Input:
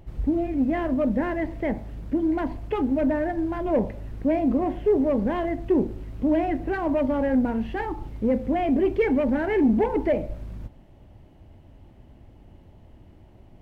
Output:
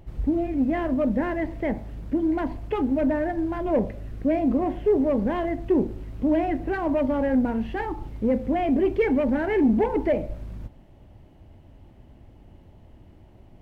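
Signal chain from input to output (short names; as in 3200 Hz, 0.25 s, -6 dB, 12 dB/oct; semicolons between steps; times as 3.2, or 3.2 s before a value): 3.79–4.41 notch 900 Hz, Q 5.5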